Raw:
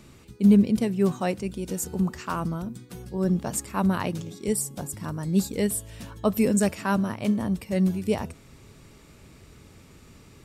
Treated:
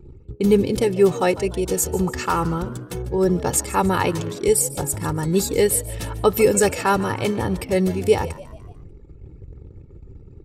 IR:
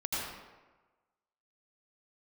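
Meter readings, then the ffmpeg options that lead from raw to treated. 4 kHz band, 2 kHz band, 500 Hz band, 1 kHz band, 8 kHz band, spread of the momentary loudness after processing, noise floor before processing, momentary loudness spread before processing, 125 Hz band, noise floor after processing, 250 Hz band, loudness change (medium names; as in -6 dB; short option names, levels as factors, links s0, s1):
+9.0 dB, +8.0 dB, +10.5 dB, +9.5 dB, +9.0 dB, 7 LU, -52 dBFS, 10 LU, +3.0 dB, -45 dBFS, 0.0 dB, +5.0 dB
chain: -filter_complex "[0:a]anlmdn=0.0398,aecho=1:1:2.3:0.73,asplit=2[s0][s1];[s1]acompressor=threshold=0.0224:ratio=5,volume=1[s2];[s0][s2]amix=inputs=2:normalize=0,asplit=5[s3][s4][s5][s6][s7];[s4]adelay=147,afreqshift=71,volume=0.133[s8];[s5]adelay=294,afreqshift=142,volume=0.0603[s9];[s6]adelay=441,afreqshift=213,volume=0.0269[s10];[s7]adelay=588,afreqshift=284,volume=0.0122[s11];[s3][s8][s9][s10][s11]amix=inputs=5:normalize=0,volume=1.68"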